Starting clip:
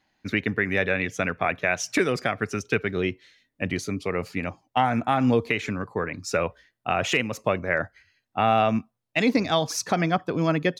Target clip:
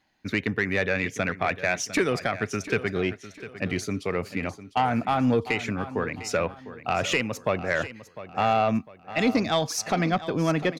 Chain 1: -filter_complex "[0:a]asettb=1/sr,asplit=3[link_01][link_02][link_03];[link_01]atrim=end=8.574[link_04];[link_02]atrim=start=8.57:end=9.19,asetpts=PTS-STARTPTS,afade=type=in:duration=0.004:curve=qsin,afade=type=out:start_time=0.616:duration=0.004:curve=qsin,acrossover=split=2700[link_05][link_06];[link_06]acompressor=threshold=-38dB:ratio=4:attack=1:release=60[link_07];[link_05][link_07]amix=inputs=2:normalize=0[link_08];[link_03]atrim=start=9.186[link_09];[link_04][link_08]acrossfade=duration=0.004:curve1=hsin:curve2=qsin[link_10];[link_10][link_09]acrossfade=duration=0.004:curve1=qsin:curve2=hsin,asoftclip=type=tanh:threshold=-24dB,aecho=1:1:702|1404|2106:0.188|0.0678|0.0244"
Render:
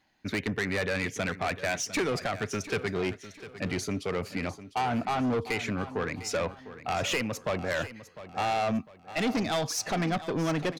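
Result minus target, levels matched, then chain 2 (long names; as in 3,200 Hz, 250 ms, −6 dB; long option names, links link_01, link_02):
soft clipping: distortion +11 dB
-filter_complex "[0:a]asettb=1/sr,asplit=3[link_01][link_02][link_03];[link_01]atrim=end=8.574[link_04];[link_02]atrim=start=8.57:end=9.19,asetpts=PTS-STARTPTS,afade=type=in:duration=0.004:curve=qsin,afade=type=out:start_time=0.616:duration=0.004:curve=qsin,acrossover=split=2700[link_05][link_06];[link_06]acompressor=threshold=-38dB:ratio=4:attack=1:release=60[link_07];[link_05][link_07]amix=inputs=2:normalize=0[link_08];[link_03]atrim=start=9.186[link_09];[link_04][link_08]acrossfade=duration=0.004:curve1=hsin:curve2=qsin[link_10];[link_10][link_09]acrossfade=duration=0.004:curve1=qsin:curve2=hsin,asoftclip=type=tanh:threshold=-13dB,aecho=1:1:702|1404|2106:0.188|0.0678|0.0244"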